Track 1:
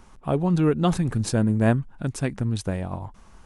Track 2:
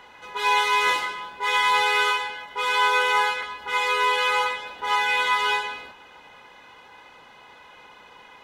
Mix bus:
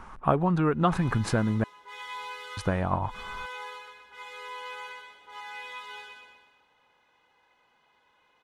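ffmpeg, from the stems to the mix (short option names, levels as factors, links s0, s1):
-filter_complex "[0:a]bass=f=250:g=2,treble=f=4000:g=-6,acompressor=threshold=0.0708:ratio=6,equalizer=f=1200:w=0.77:g=12.5,volume=1,asplit=3[s0][s1][s2];[s0]atrim=end=1.64,asetpts=PTS-STARTPTS,afade=t=out:st=1.636:d=0.004:c=hsin[s3];[s1]atrim=start=1.64:end=2.57,asetpts=PTS-STARTPTS,volume=0[s4];[s2]atrim=start=2.57,asetpts=PTS-STARTPTS,afade=t=in:d=0.004:c=hsin[s5];[s3][s4][s5]concat=n=3:v=0:a=1,asplit=2[s6][s7];[1:a]adelay=450,volume=0.1,asplit=2[s8][s9];[s9]volume=0.562[s10];[s7]apad=whole_len=391936[s11];[s8][s11]sidechaincompress=threshold=0.02:ratio=8:attack=16:release=159[s12];[s10]aecho=0:1:124|248|372|496|620|744|868:1|0.47|0.221|0.104|0.0488|0.0229|0.0108[s13];[s6][s12][s13]amix=inputs=3:normalize=0"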